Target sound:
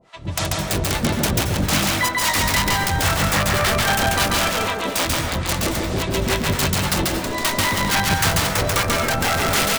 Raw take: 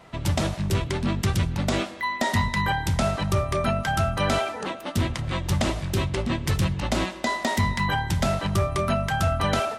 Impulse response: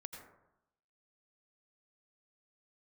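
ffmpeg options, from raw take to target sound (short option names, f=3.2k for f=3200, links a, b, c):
-filter_complex "[0:a]lowpass=8.9k,bass=f=250:g=-5,treble=f=4k:g=5,dynaudnorm=f=270:g=3:m=10.5dB,aeval=exprs='(mod(3.35*val(0)+1,2)-1)/3.35':c=same,acrossover=split=610[a][b];[a]aeval=exprs='val(0)*(1-1/2+1/2*cos(2*PI*3.7*n/s))':c=same[c];[b]aeval=exprs='val(0)*(1-1/2-1/2*cos(2*PI*3.7*n/s))':c=same[d];[c][d]amix=inputs=2:normalize=0,asoftclip=type=hard:threshold=-13dB,aecho=1:1:676:0.141,asplit=2[e][f];[1:a]atrim=start_sample=2205,adelay=139[g];[f][g]afir=irnorm=-1:irlink=0,volume=4.5dB[h];[e][h]amix=inputs=2:normalize=0"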